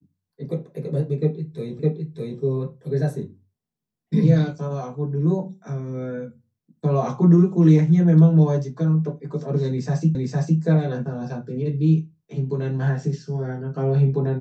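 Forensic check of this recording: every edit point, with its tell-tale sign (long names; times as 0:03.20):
0:01.79: the same again, the last 0.61 s
0:10.15: the same again, the last 0.46 s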